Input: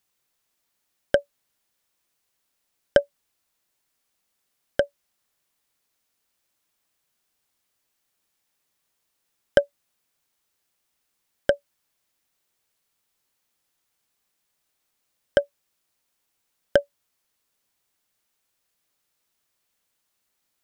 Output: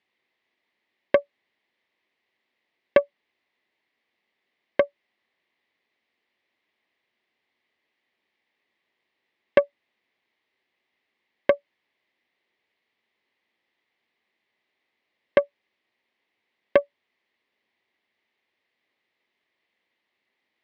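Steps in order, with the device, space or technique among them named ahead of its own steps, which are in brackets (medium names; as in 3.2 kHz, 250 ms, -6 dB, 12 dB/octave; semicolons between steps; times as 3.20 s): guitar amplifier (valve stage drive 13 dB, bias 0.55; tone controls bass -4 dB, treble -2 dB; cabinet simulation 110–3800 Hz, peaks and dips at 150 Hz -5 dB, 230 Hz +4 dB, 370 Hz +5 dB, 1.4 kHz -9 dB, 2 kHz +10 dB); trim +5.5 dB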